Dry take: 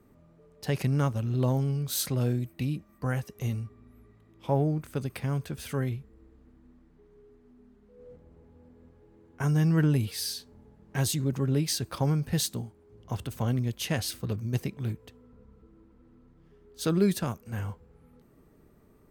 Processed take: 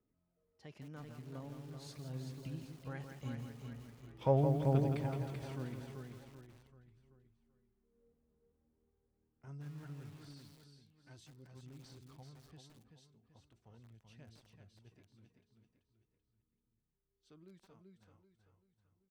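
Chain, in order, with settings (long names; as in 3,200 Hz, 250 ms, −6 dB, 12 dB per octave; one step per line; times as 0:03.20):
source passing by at 0:04.17, 19 m/s, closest 6.7 metres
low-pass filter 5,700 Hz 12 dB per octave
on a send: repeating echo 385 ms, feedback 43%, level −5.5 dB
on the sum: phase shifter 0.42 Hz, delay 4.9 ms, feedback 32%
feedback echo at a low word length 167 ms, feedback 35%, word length 9 bits, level −6 dB
level −3.5 dB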